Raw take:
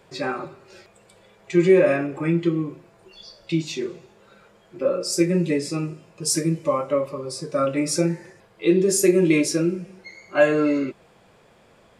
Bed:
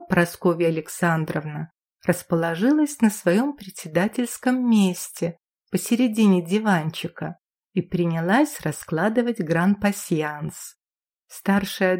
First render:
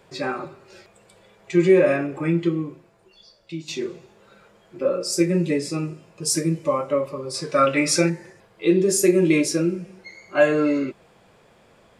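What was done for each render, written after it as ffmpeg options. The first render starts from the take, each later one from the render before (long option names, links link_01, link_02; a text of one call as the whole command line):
ffmpeg -i in.wav -filter_complex "[0:a]asettb=1/sr,asplit=3[link_01][link_02][link_03];[link_01]atrim=end=7.344[link_04];[link_02]atrim=start=7.34:end=8.1,asetpts=PTS-STARTPTS,afade=type=in:duration=0.004:curve=qsin,afade=type=out:start_time=0.756:duration=0.004:curve=qsin,equalizer=frequency=2300:width_type=o:width=2.7:gain=10.5[link_05];[link_03]atrim=start=8.096[link_06];[link_04][link_05]acrossfade=duration=0.004:curve1=hsin:curve2=qsin[link_07];[link_07][link_06]acrossfade=duration=0.004:curve1=qsin:curve2=hsin,asplit=2[link_08][link_09];[link_08]atrim=end=3.68,asetpts=PTS-STARTPTS,afade=type=out:start_time=2.45:duration=1.23:curve=qua:silence=0.334965[link_10];[link_09]atrim=start=3.68,asetpts=PTS-STARTPTS,afade=type=in:duration=0.004:curve=hsin:silence=0.334965[link_11];[link_10][link_11]concat=n=2:v=0:a=1" out.wav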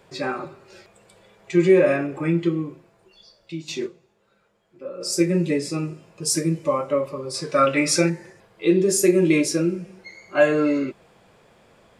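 ffmpeg -i in.wav -filter_complex "[0:a]asplit=3[link_01][link_02][link_03];[link_01]atrim=end=4.15,asetpts=PTS-STARTPTS,afade=type=out:start_time=3.85:duration=0.3:curve=exp:silence=0.237137[link_04];[link_02]atrim=start=4.15:end=4.73,asetpts=PTS-STARTPTS,volume=-12.5dB[link_05];[link_03]atrim=start=4.73,asetpts=PTS-STARTPTS,afade=type=in:duration=0.3:curve=exp:silence=0.237137[link_06];[link_04][link_05][link_06]concat=n=3:v=0:a=1" out.wav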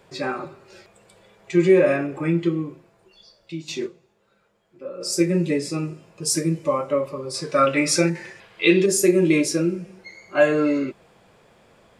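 ffmpeg -i in.wav -filter_complex "[0:a]asettb=1/sr,asplit=3[link_01][link_02][link_03];[link_01]atrim=end=8.154[link_04];[link_02]atrim=start=8.15:end=8.86,asetpts=PTS-STARTPTS,afade=type=in:duration=0.004:curve=qsin,afade=type=out:start_time=0.706:duration=0.004:curve=qsin,equalizer=frequency=2700:width=0.61:gain=14[link_05];[link_03]atrim=start=8.856[link_06];[link_04][link_05]acrossfade=duration=0.004:curve1=hsin:curve2=qsin[link_07];[link_07][link_06]acrossfade=duration=0.004:curve1=qsin:curve2=hsin" out.wav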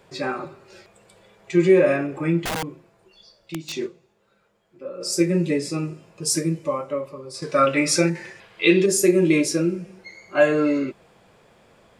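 ffmpeg -i in.wav -filter_complex "[0:a]asettb=1/sr,asplit=3[link_01][link_02][link_03];[link_01]atrim=end=2.404[link_04];[link_02]atrim=start=2.4:end=3.77,asetpts=PTS-STARTPTS,afade=type=in:duration=0.004:curve=qsin,afade=type=out:start_time=1.366:duration=0.004:curve=qsin,aeval=exprs='(mod(11.9*val(0)+1,2)-1)/11.9':channel_layout=same[link_05];[link_03]atrim=start=3.766[link_06];[link_04][link_05]acrossfade=duration=0.004:curve1=hsin:curve2=qsin[link_07];[link_07][link_06]acrossfade=duration=0.004:curve1=qsin:curve2=hsin,asplit=2[link_08][link_09];[link_08]atrim=end=7.42,asetpts=PTS-STARTPTS,afade=type=out:start_time=6.36:duration=1.06:curve=qua:silence=0.473151[link_10];[link_09]atrim=start=7.42,asetpts=PTS-STARTPTS,afade=type=in:duration=0.004:curve=hsin:silence=0.473151[link_11];[link_10][link_11]concat=n=2:v=0:a=1" out.wav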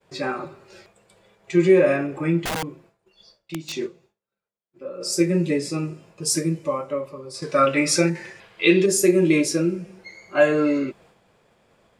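ffmpeg -i in.wav -af "agate=range=-33dB:threshold=-49dB:ratio=3:detection=peak" out.wav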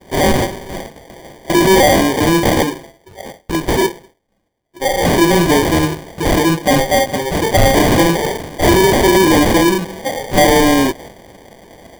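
ffmpeg -i in.wav -filter_complex "[0:a]asplit=2[link_01][link_02];[link_02]highpass=frequency=720:poles=1,volume=30dB,asoftclip=type=tanh:threshold=-3.5dB[link_03];[link_01][link_03]amix=inputs=2:normalize=0,lowpass=frequency=7500:poles=1,volume=-6dB,acrossover=split=110[link_04][link_05];[link_05]acrusher=samples=33:mix=1:aa=0.000001[link_06];[link_04][link_06]amix=inputs=2:normalize=0" out.wav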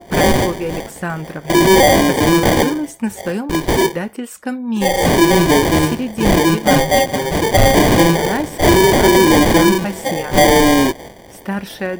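ffmpeg -i in.wav -i bed.wav -filter_complex "[1:a]volume=-2.5dB[link_01];[0:a][link_01]amix=inputs=2:normalize=0" out.wav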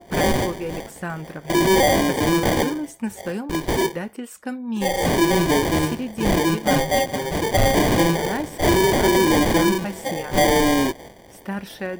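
ffmpeg -i in.wav -af "volume=-6.5dB" out.wav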